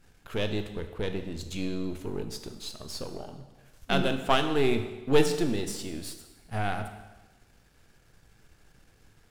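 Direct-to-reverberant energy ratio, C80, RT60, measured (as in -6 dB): 7.0 dB, 10.5 dB, 1.2 s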